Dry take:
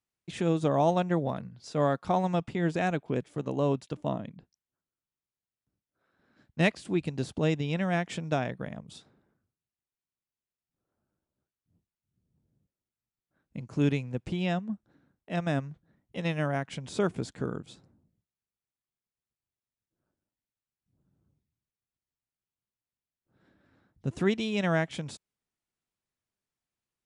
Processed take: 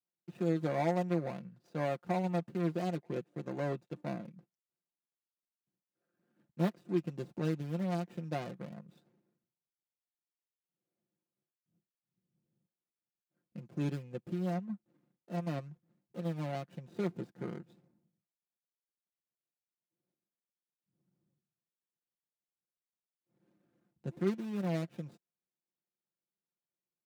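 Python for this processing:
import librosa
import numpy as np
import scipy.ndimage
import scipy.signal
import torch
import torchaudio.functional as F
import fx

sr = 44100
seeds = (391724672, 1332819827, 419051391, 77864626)

y = scipy.signal.medfilt(x, 41)
y = scipy.signal.sosfilt(scipy.signal.butter(2, 160.0, 'highpass', fs=sr, output='sos'), y)
y = y + 0.63 * np.pad(y, (int(5.7 * sr / 1000.0), 0))[:len(y)]
y = F.gain(torch.from_numpy(y), -6.0).numpy()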